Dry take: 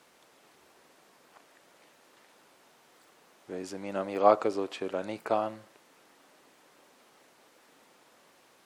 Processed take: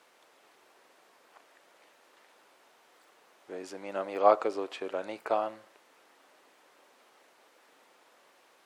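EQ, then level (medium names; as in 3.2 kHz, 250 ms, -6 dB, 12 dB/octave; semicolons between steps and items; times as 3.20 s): tone controls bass -14 dB, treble -4 dB; 0.0 dB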